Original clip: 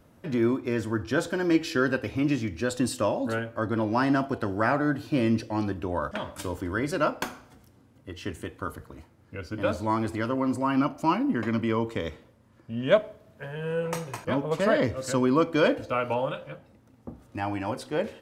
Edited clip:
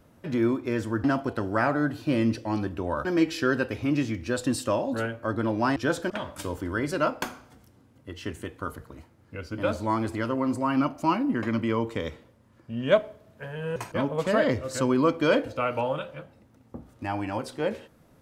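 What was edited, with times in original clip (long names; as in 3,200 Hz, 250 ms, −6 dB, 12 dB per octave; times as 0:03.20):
0:01.04–0:01.38: swap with 0:04.09–0:06.10
0:13.76–0:14.09: remove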